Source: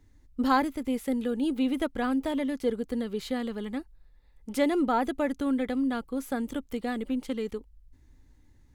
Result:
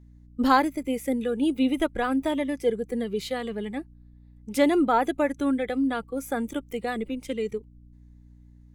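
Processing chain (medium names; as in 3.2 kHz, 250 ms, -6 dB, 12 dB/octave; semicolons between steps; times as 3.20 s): spectral noise reduction 11 dB; hum 60 Hz, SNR 24 dB; trim +4.5 dB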